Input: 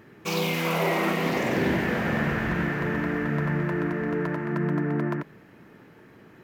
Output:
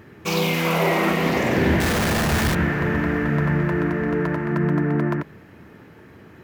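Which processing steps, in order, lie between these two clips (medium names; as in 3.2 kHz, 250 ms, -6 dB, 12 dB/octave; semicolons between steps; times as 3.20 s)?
1.80–2.55 s: Schmitt trigger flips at -38.5 dBFS; peaking EQ 77 Hz +11.5 dB 0.68 oct; trim +4.5 dB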